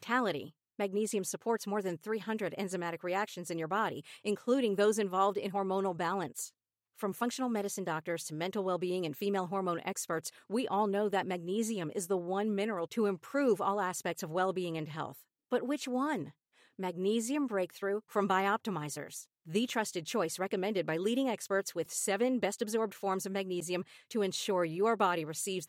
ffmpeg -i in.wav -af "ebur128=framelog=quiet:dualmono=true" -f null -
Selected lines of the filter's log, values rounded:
Integrated loudness:
  I:         -31.0 LUFS
  Threshold: -41.1 LUFS
Loudness range:
  LRA:         2.9 LU
  Threshold: -51.2 LUFS
  LRA low:   -32.9 LUFS
  LRA high:  -29.9 LUFS